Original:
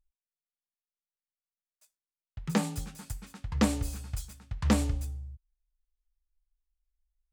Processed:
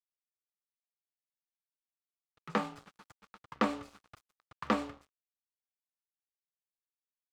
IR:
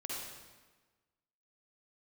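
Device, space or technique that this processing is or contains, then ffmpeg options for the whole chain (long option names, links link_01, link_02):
pocket radio on a weak battery: -af "highpass=310,lowpass=3000,aeval=exprs='sgn(val(0))*max(abs(val(0))-0.00299,0)':channel_layout=same,equalizer=frequency=1200:width_type=o:width=0.38:gain=8"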